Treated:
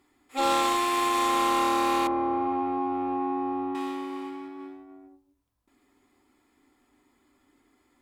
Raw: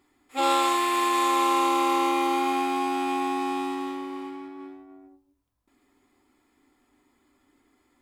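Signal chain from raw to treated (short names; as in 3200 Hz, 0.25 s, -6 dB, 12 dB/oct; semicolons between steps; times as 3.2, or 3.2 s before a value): one-sided clip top -24.5 dBFS; 2.07–3.75 LPF 1000 Hz 12 dB/oct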